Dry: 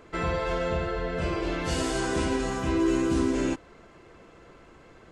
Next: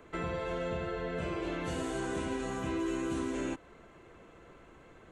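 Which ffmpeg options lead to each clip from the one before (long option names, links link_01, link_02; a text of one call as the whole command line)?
ffmpeg -i in.wav -filter_complex "[0:a]equalizer=frequency=5000:width=4.4:gain=-11.5,acrossover=split=91|510|2000[link_01][link_02][link_03][link_04];[link_01]acompressor=threshold=-46dB:ratio=4[link_05];[link_02]acompressor=threshold=-31dB:ratio=4[link_06];[link_03]acompressor=threshold=-37dB:ratio=4[link_07];[link_04]acompressor=threshold=-44dB:ratio=4[link_08];[link_05][link_06][link_07][link_08]amix=inputs=4:normalize=0,volume=-3.5dB" out.wav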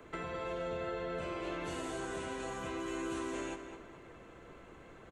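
ffmpeg -i in.wav -filter_complex "[0:a]acrossover=split=100|450[link_01][link_02][link_03];[link_01]acompressor=threshold=-58dB:ratio=4[link_04];[link_02]acompressor=threshold=-48dB:ratio=4[link_05];[link_03]acompressor=threshold=-41dB:ratio=4[link_06];[link_04][link_05][link_06]amix=inputs=3:normalize=0,asplit=2[link_07][link_08];[link_08]adelay=212,lowpass=frequency=4600:poles=1,volume=-8.5dB,asplit=2[link_09][link_10];[link_10]adelay=212,lowpass=frequency=4600:poles=1,volume=0.41,asplit=2[link_11][link_12];[link_12]adelay=212,lowpass=frequency=4600:poles=1,volume=0.41,asplit=2[link_13][link_14];[link_14]adelay=212,lowpass=frequency=4600:poles=1,volume=0.41,asplit=2[link_15][link_16];[link_16]adelay=212,lowpass=frequency=4600:poles=1,volume=0.41[link_17];[link_07][link_09][link_11][link_13][link_15][link_17]amix=inputs=6:normalize=0,volume=1dB" out.wav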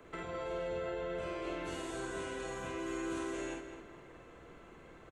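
ffmpeg -i in.wav -filter_complex "[0:a]asplit=2[link_01][link_02];[link_02]adelay=48,volume=-3.5dB[link_03];[link_01][link_03]amix=inputs=2:normalize=0,volume=-2.5dB" out.wav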